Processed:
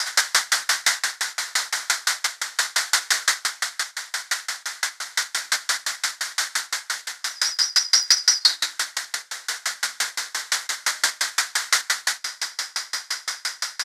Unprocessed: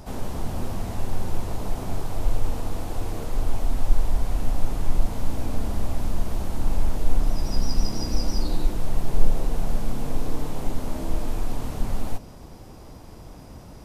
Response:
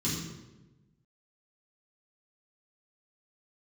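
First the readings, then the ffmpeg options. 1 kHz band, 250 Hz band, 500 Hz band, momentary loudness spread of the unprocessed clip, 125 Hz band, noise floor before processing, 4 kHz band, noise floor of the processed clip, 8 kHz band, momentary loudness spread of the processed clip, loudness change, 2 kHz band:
+6.0 dB, under -20 dB, -10.0 dB, 11 LU, under -35 dB, -43 dBFS, +20.5 dB, -50 dBFS, no reading, 10 LU, +8.5 dB, +22.0 dB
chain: -filter_complex "[0:a]lowpass=5100,equalizer=f=2000:t=o:w=0.56:g=13,acompressor=threshold=0.0631:ratio=12,aexciter=amount=13:drive=3:freq=3800,asoftclip=type=hard:threshold=0.158,highpass=f=1500:t=q:w=4.5,aecho=1:1:75|150|225|300|375:0.237|0.111|0.0524|0.0246|0.0116,asplit=2[s0][s1];[1:a]atrim=start_sample=2205[s2];[s1][s2]afir=irnorm=-1:irlink=0,volume=0.0562[s3];[s0][s3]amix=inputs=2:normalize=0,alimiter=level_in=10.6:limit=0.891:release=50:level=0:latency=1,aeval=exprs='val(0)*pow(10,-34*if(lt(mod(5.8*n/s,1),2*abs(5.8)/1000),1-mod(5.8*n/s,1)/(2*abs(5.8)/1000),(mod(5.8*n/s,1)-2*abs(5.8)/1000)/(1-2*abs(5.8)/1000))/20)':c=same"

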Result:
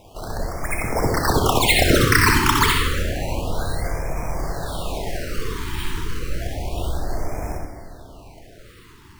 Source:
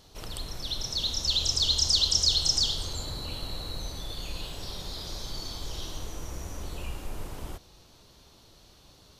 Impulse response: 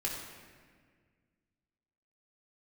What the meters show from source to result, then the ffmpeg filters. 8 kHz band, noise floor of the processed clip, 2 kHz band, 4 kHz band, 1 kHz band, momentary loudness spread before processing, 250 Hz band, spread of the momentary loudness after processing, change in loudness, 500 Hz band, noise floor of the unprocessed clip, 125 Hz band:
+3.5 dB, -46 dBFS, +25.5 dB, -0.5 dB, +22.0 dB, 18 LU, +19.0 dB, 15 LU, +6.0 dB, +19.5 dB, -57 dBFS, +14.0 dB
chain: -filter_complex "[0:a]equalizer=f=680:t=o:w=0.42:g=11,bandreject=f=1200:w=16,acrusher=samples=10:mix=1:aa=0.000001:lfo=1:lforange=6:lforate=1,asplit=2[s0][s1];[1:a]atrim=start_sample=2205,adelay=62[s2];[s1][s2]afir=irnorm=-1:irlink=0,volume=0.596[s3];[s0][s3]amix=inputs=2:normalize=0,afftfilt=real='re*(1-between(b*sr/1024,590*pow(3600/590,0.5+0.5*sin(2*PI*0.3*pts/sr))/1.41,590*pow(3600/590,0.5+0.5*sin(2*PI*0.3*pts/sr))*1.41))':imag='im*(1-between(b*sr/1024,590*pow(3600/590,0.5+0.5*sin(2*PI*0.3*pts/sr))/1.41,590*pow(3600/590,0.5+0.5*sin(2*PI*0.3*pts/sr))*1.41))':win_size=1024:overlap=0.75,volume=2.24"

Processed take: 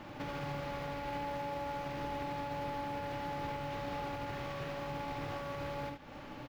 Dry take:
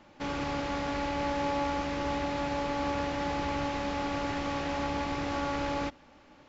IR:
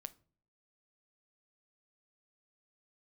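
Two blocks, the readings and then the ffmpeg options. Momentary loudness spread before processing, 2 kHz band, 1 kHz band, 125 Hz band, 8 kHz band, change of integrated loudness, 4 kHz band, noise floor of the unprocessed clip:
2 LU, -8.0 dB, -6.5 dB, -4.0 dB, no reading, -7.5 dB, -9.0 dB, -57 dBFS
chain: -filter_complex "[0:a]equalizer=f=130:w=4.9:g=10,acompressor=threshold=0.00631:ratio=3,alimiter=level_in=5.96:limit=0.0631:level=0:latency=1:release=144,volume=0.168,acrusher=bits=5:mode=log:mix=0:aa=0.000001,aecho=1:1:48|76:0.398|0.447,asplit=2[s0][s1];[1:a]atrim=start_sample=2205,lowpass=5100[s2];[s1][s2]afir=irnorm=-1:irlink=0,volume=1.5[s3];[s0][s3]amix=inputs=2:normalize=0,volume=1.33"

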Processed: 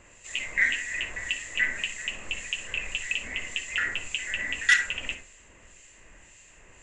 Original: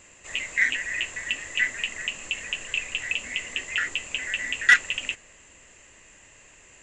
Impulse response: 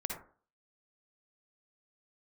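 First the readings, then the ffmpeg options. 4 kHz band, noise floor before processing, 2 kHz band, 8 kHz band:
-2.0 dB, -53 dBFS, -2.5 dB, -1.5 dB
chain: -filter_complex "[0:a]acrossover=split=2300[s0][s1];[s0]aeval=exprs='val(0)*(1-0.7/2+0.7/2*cos(2*PI*1.8*n/s))':c=same[s2];[s1]aeval=exprs='val(0)*(1-0.7/2-0.7/2*cos(2*PI*1.8*n/s))':c=same[s3];[s2][s3]amix=inputs=2:normalize=0,asplit=2[s4][s5];[1:a]atrim=start_sample=2205,lowshelf=f=87:g=10[s6];[s5][s6]afir=irnorm=-1:irlink=0,volume=0.841[s7];[s4][s7]amix=inputs=2:normalize=0,volume=0.668"

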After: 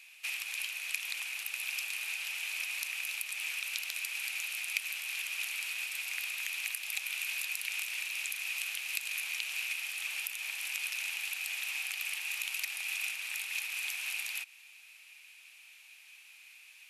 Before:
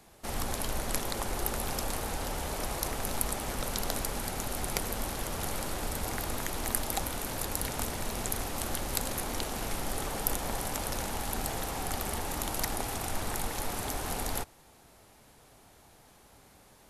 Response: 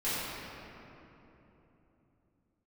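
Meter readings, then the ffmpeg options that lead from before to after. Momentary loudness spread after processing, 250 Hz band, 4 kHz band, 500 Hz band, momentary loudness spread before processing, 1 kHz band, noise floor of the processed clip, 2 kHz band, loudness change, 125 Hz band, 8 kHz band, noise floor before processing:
19 LU, under -40 dB, +1.5 dB, under -30 dB, 3 LU, -19.0 dB, -56 dBFS, +7.0 dB, -1.0 dB, under -40 dB, -4.5 dB, -58 dBFS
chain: -af "acompressor=threshold=0.02:ratio=6,highpass=f=2500:t=q:w=12"

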